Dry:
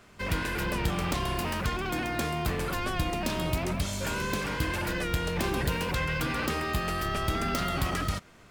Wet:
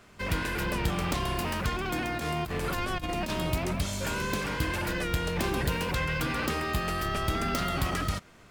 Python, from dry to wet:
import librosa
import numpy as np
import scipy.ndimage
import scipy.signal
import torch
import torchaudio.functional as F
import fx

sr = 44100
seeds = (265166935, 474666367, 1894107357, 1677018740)

y = fx.over_compress(x, sr, threshold_db=-31.0, ratio=-0.5, at=(2.18, 3.33))